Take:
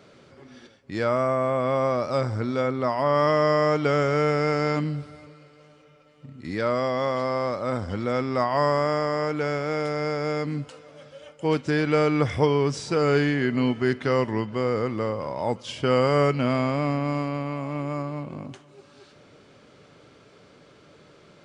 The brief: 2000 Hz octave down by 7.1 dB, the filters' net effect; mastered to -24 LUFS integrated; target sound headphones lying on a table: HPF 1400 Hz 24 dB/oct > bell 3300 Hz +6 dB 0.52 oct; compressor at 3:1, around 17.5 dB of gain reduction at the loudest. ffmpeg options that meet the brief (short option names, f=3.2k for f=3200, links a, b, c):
-af "equalizer=f=2k:t=o:g=-8.5,acompressor=threshold=-42dB:ratio=3,highpass=f=1.4k:w=0.5412,highpass=f=1.4k:w=1.3066,equalizer=f=3.3k:t=o:w=0.52:g=6,volume=29dB"